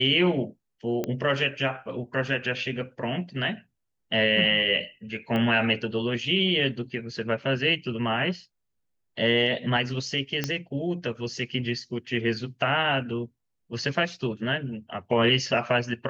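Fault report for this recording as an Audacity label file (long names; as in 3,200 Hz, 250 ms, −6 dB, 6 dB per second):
1.040000	1.040000	click −15 dBFS
5.360000	5.360000	click −18 dBFS
10.440000	10.440000	click −11 dBFS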